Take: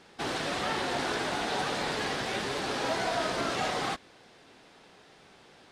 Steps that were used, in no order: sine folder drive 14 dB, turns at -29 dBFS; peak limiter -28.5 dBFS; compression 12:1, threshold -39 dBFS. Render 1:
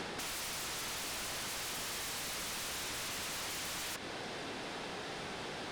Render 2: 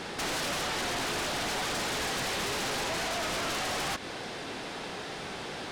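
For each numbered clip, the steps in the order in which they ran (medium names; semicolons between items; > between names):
peak limiter > sine folder > compression; peak limiter > compression > sine folder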